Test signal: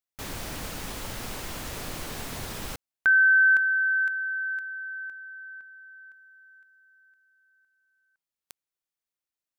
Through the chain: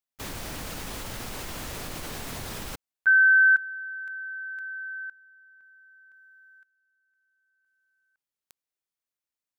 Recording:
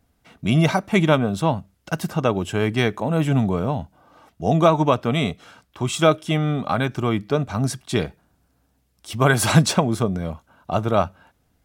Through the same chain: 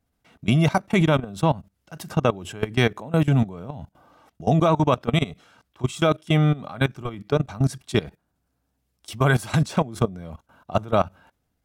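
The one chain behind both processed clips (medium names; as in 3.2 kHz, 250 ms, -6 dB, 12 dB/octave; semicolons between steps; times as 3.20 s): dynamic bell 140 Hz, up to +4 dB, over -35 dBFS, Q 4.4; level held to a coarse grid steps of 19 dB; trim +2 dB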